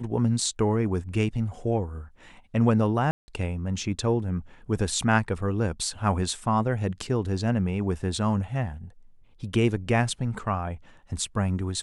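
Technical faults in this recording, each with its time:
3.11–3.28 gap 0.17 s

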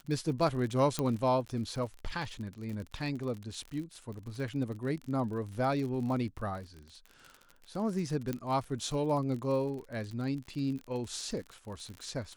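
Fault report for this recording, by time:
crackle 47/s -38 dBFS
0.99 pop -16 dBFS
8.33 pop -21 dBFS

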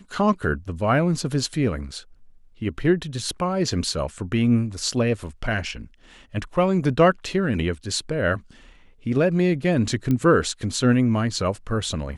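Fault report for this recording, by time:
10.11 pop -13 dBFS

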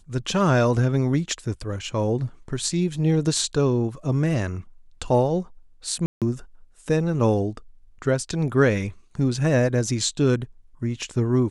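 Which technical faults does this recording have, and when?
6.06–6.22 gap 0.157 s

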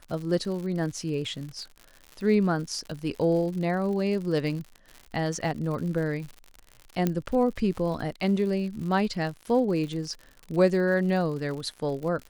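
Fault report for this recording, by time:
crackle 93/s -35 dBFS
7.07 pop -12 dBFS

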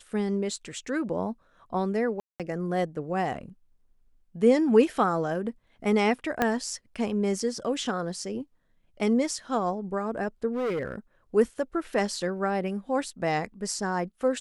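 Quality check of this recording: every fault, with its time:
2.2–2.4 gap 0.197 s
6.42 pop -10 dBFS
10.52–10.95 clipped -25.5 dBFS

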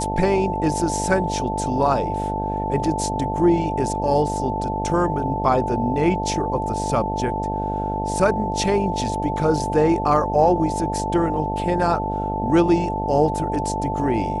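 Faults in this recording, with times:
buzz 50 Hz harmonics 16 -27 dBFS
tone 880 Hz -25 dBFS

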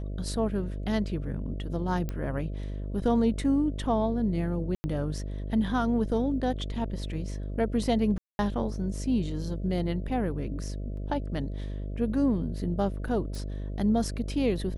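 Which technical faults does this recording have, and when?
buzz 50 Hz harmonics 13 -34 dBFS
2.09 pop -20 dBFS
4.75–4.84 gap 90 ms
8.18–8.39 gap 0.211 s
10.97 gap 2.9 ms
13.35 pop

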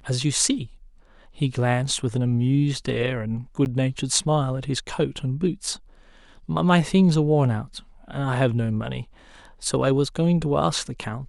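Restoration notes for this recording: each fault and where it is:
3.65–3.66 gap 9.8 ms

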